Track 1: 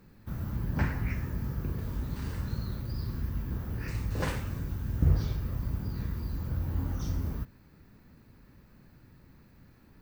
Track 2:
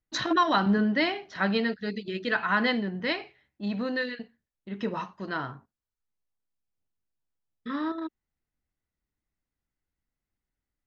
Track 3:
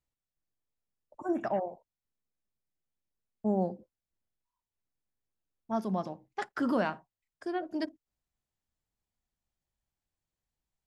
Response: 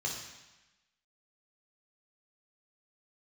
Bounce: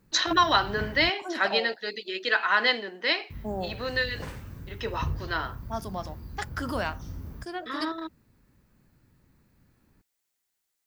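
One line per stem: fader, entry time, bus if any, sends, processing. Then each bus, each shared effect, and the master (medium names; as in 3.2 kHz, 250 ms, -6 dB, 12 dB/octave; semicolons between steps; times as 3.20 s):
-7.0 dB, 0.00 s, muted 1.10–3.30 s, no send, none
0.0 dB, 0.00 s, no send, high-pass 330 Hz 24 dB/octave; treble shelf 2.3 kHz +10 dB
+1.0 dB, 0.00 s, no send, tilt EQ +3.5 dB/octave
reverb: none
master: none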